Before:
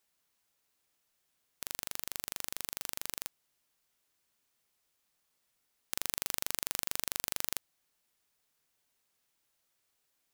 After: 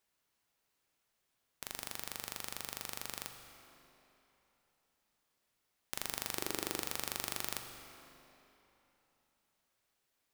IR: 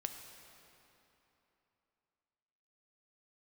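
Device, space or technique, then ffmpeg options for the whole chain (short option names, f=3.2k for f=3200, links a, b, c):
swimming-pool hall: -filter_complex "[0:a]asettb=1/sr,asplit=3[a][b][c];[a]atrim=end=6.364[d];[b]atrim=start=6.36:end=6.83,asetpts=PTS-STARTPTS,afade=t=in:d=0.004:c=qsin,afade=t=out:st=0.466:d=0.004:c=qsin,equalizer=f=350:t=o:w=0.9:g=14[e];[c]atrim=start=6.826[f];[d][e]acrossfade=d=0.004:c1=hsin:c2=qsin[g];[g][f]acrossfade=d=0.004:c1=qsin:c2=hsin[h];[1:a]atrim=start_sample=2205[i];[h][i]afir=irnorm=-1:irlink=0,highshelf=f=3.8k:g=-5.5,volume=2dB"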